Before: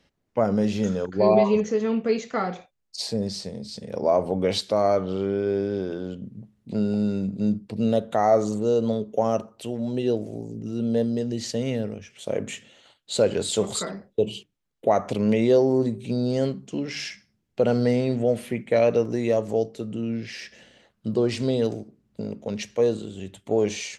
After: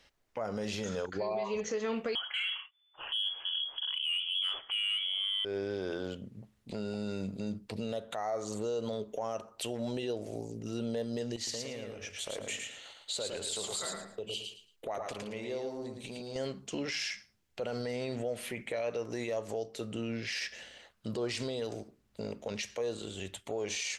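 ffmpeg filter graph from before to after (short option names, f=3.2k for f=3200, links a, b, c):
-filter_complex "[0:a]asettb=1/sr,asplit=3[a][b][c];[a]atrim=end=2.154[d];[b]atrim=start=2.15:end=5.45,asetpts=PTS-STARTPTS,afade=t=in:d=0.004:c=qsin,afade=t=out:st=3.296:d=0.004:c=qsin,bandreject=f=1.7k:w=16,lowpass=f=3k:t=q:w=0.5098,lowpass=f=3k:t=q:w=0.6013,lowpass=f=3k:t=q:w=0.9,lowpass=f=3k:t=q:w=2.563,afreqshift=-3500,asplit=2[e][f];[f]highpass=f=720:p=1,volume=10dB,asoftclip=type=tanh:threshold=-9dB[g];[e][g]amix=inputs=2:normalize=0,lowpass=f=2.7k:p=1,volume=-6dB[h];[c]atrim=start=5.446[i];[d][h]acrossfade=d=0.004:c1=hsin:c2=qsin[j];[j][i]acrossfade=d=0.004:c1=qsin:c2=hsin,asettb=1/sr,asplit=3[k][l][m];[k]atrim=end=11.364[n];[l]atrim=start=11.36:end=16.36,asetpts=PTS-STARTPTS,afade=t=in:d=0.004:c=qsin,afade=t=out:st=4.996:d=0.004:c=qsin,acompressor=threshold=-38dB:ratio=3:attack=3.2:release=140:knee=1:detection=peak,aecho=1:1:111|222|333:0.596|0.143|0.0343,atrim=end_sample=220500[o];[m]atrim=start=16.356[p];[n][o]acrossfade=d=0.004:c1=hsin:c2=qsin[q];[q][p]acrossfade=d=0.004:c1=qsin:c2=hsin,equalizer=f=180:t=o:w=2.7:g=-14,acompressor=threshold=-34dB:ratio=5,alimiter=level_in=6.5dB:limit=-24dB:level=0:latency=1:release=21,volume=-6.5dB,volume=4.5dB"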